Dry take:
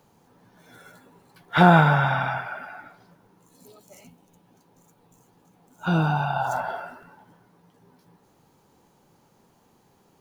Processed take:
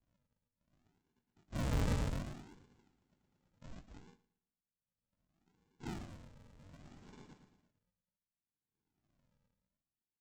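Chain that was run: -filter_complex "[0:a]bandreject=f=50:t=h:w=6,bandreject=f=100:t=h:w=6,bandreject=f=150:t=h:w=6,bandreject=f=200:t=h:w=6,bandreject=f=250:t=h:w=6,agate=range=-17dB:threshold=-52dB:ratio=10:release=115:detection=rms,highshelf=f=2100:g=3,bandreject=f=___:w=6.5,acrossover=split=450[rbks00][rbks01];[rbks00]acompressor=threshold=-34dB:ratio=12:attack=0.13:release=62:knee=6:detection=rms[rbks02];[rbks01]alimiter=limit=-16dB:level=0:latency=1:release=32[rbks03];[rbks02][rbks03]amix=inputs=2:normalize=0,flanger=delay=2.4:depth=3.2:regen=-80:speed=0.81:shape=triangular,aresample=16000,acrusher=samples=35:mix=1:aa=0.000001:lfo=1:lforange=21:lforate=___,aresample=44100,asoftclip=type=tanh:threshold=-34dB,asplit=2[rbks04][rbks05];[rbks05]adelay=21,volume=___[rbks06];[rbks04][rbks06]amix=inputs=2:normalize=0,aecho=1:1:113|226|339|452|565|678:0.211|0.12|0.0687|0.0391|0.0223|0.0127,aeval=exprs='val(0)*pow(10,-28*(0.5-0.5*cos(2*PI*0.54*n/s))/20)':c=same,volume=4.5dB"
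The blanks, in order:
970, 0.66, -11dB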